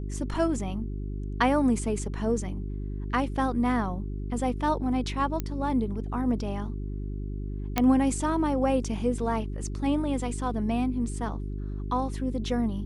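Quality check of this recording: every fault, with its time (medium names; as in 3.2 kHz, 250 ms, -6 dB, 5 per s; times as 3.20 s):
hum 50 Hz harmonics 8 -33 dBFS
5.40 s: pop -16 dBFS
7.78 s: pop -8 dBFS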